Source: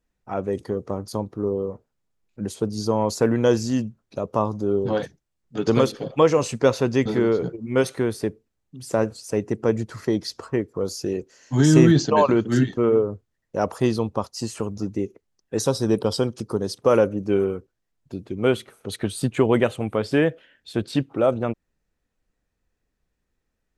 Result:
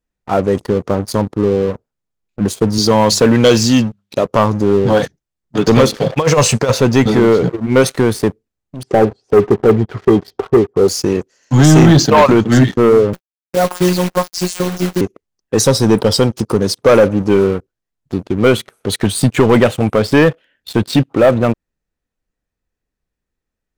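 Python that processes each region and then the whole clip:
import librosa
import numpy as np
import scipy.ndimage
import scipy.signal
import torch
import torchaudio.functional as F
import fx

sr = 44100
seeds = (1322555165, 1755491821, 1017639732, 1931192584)

y = fx.chain(x, sr, fx.highpass(hz=83.0, slope=12),
    fx.peak_eq(hz=3300.0, db=9.5, octaves=1.2),
    fx.hum_notches(base_hz=50, count=4), at=(2.78, 4.26))
y = fx.chain(y, sr, fx.peak_eq(hz=290.0, db=-8.5, octaves=0.64),
    fx.over_compress(threshold_db=-21.0, ratio=-0.5), at=(5.97, 6.72))
y = fx.chain(y, sr, fx.spacing_loss(db_at_10k=35),
    fx.small_body(hz=(400.0, 760.0, 3200.0), ring_ms=75, db=15), at=(8.83, 10.88))
y = fx.chain(y, sr, fx.robotise(hz=180.0),
    fx.quant_companded(bits=4),
    fx.doubler(ms=13.0, db=-13), at=(13.13, 15.01))
y = fx.dynamic_eq(y, sr, hz=370.0, q=2.0, threshold_db=-29.0, ratio=4.0, max_db=-4)
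y = fx.leveller(y, sr, passes=3)
y = y * librosa.db_to_amplitude(2.5)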